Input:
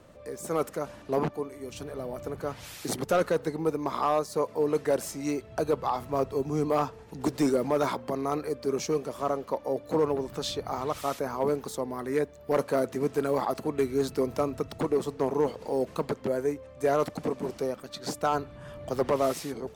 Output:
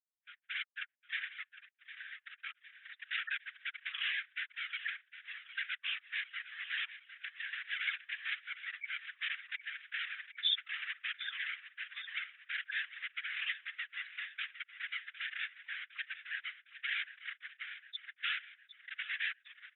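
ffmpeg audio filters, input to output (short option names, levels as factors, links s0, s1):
-filter_complex "[0:a]afftfilt=real='re*gte(hypot(re,im),0.0447)':imag='im*gte(hypot(re,im),0.0447)':win_size=1024:overlap=0.75,aecho=1:1:4.5:0.97,acompressor=threshold=0.0178:ratio=1.5,aresample=8000,asoftclip=type=hard:threshold=0.0251,aresample=44100,afftfilt=real='hypot(re,im)*cos(2*PI*random(0))':imag='hypot(re,im)*sin(2*PI*random(1))':win_size=512:overlap=0.75,asuperpass=centerf=2400:order=12:qfactor=1.2,asplit=2[s0][s1];[s1]aecho=0:1:758|1516|2274|3032|3790:0.211|0.114|0.0616|0.0333|0.018[s2];[s0][s2]amix=inputs=2:normalize=0,volume=6.68"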